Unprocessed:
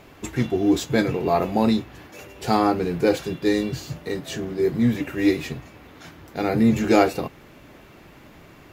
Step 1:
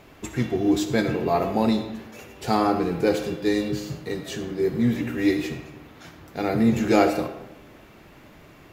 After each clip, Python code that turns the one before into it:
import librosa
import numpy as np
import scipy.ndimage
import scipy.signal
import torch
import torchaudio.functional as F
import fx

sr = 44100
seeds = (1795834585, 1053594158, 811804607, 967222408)

y = fx.rev_freeverb(x, sr, rt60_s=0.98, hf_ratio=0.65, predelay_ms=20, drr_db=8.0)
y = F.gain(torch.from_numpy(y), -2.0).numpy()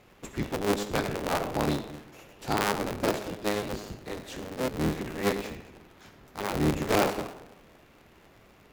y = fx.cycle_switch(x, sr, every=3, mode='inverted')
y = fx.cheby_harmonics(y, sr, harmonics=(3,), levels_db=(-15,), full_scale_db=-4.5)
y = np.clip(10.0 ** (13.5 / 20.0) * y, -1.0, 1.0) / 10.0 ** (13.5 / 20.0)
y = F.gain(torch.from_numpy(y), -1.0).numpy()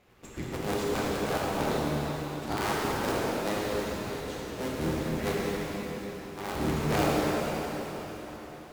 y = fx.rev_plate(x, sr, seeds[0], rt60_s=4.7, hf_ratio=0.9, predelay_ms=0, drr_db=-6.0)
y = F.gain(torch.from_numpy(y), -7.0).numpy()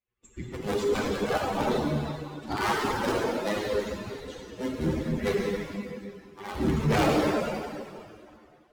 y = fx.bin_expand(x, sr, power=2.0)
y = fx.high_shelf(y, sr, hz=8200.0, db=-10.0)
y = fx.fold_sine(y, sr, drive_db=5, ceiling_db=-17.0)